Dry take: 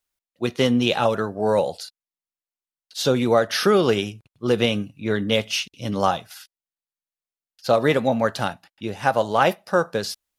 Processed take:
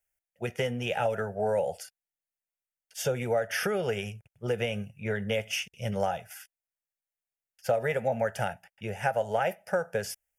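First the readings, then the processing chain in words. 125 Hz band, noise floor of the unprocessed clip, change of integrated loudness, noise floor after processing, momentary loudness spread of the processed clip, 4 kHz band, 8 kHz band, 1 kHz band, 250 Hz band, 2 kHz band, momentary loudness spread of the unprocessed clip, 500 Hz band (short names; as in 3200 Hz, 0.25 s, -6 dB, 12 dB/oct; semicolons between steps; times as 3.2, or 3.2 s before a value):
-6.5 dB, under -85 dBFS, -9.0 dB, under -85 dBFS, 11 LU, -12.0 dB, -6.0 dB, -9.0 dB, -14.0 dB, -6.5 dB, 12 LU, -8.0 dB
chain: compressor, threshold -21 dBFS, peak gain reduction 9 dB; fixed phaser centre 1100 Hz, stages 6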